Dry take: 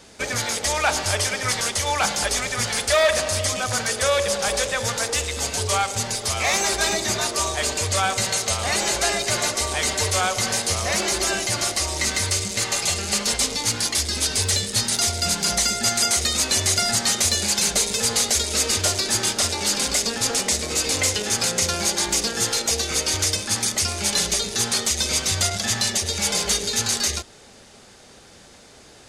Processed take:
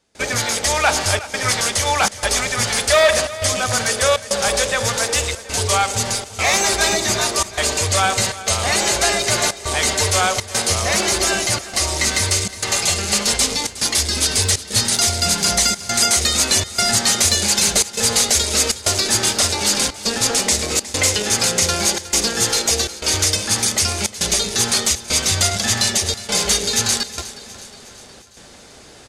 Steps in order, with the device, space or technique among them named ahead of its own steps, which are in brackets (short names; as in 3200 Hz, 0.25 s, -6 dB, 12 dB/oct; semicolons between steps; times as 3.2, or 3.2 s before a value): trance gate with a delay (step gate ".xxxxxxx.xxxxx" 101 bpm -24 dB; feedback echo 0.363 s, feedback 55%, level -16.5 dB); gain +4.5 dB